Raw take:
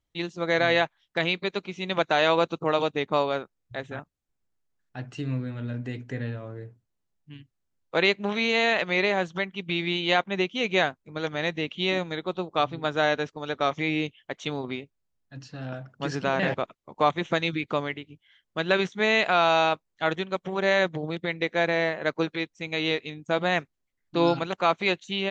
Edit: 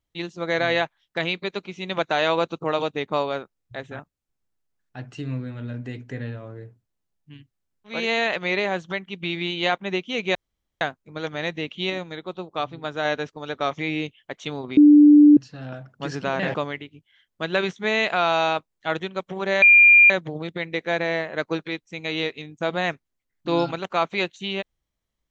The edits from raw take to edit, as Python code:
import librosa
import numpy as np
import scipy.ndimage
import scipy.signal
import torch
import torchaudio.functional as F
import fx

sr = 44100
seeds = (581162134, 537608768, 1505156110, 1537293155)

y = fx.edit(x, sr, fx.cut(start_s=7.96, length_s=0.46, crossfade_s=0.24),
    fx.insert_room_tone(at_s=10.81, length_s=0.46),
    fx.clip_gain(start_s=11.9, length_s=1.15, db=-3.0),
    fx.bleep(start_s=14.77, length_s=0.6, hz=295.0, db=-7.5),
    fx.cut(start_s=16.55, length_s=1.16),
    fx.insert_tone(at_s=20.78, length_s=0.48, hz=2400.0, db=-8.5), tone=tone)